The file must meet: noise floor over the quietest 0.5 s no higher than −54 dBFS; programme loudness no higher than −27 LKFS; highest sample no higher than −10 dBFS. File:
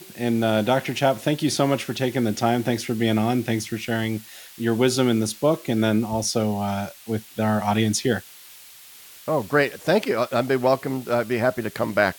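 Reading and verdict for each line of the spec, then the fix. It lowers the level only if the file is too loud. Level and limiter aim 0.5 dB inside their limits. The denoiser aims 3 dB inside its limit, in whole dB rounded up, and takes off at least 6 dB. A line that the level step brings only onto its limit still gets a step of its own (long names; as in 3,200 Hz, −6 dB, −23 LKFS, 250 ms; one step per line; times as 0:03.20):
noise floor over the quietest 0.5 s −46 dBFS: out of spec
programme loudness −23.0 LKFS: out of spec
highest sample −6.0 dBFS: out of spec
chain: broadband denoise 7 dB, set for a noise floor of −46 dBFS
level −4.5 dB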